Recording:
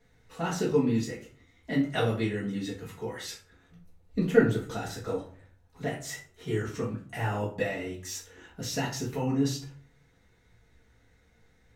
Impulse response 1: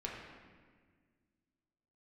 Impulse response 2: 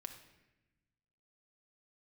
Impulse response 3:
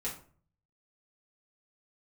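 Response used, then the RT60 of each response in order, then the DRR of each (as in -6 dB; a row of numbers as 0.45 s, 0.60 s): 3; 1.6 s, 1.0 s, 0.45 s; -3.5 dB, 5.0 dB, -7.0 dB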